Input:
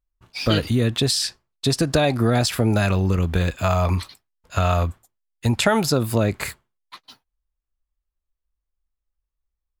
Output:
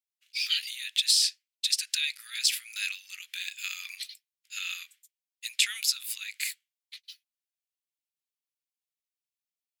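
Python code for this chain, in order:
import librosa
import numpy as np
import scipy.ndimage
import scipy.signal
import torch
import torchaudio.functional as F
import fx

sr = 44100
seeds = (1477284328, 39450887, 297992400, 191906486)

y = scipy.signal.sosfilt(scipy.signal.butter(6, 2200.0, 'highpass', fs=sr, output='sos'), x)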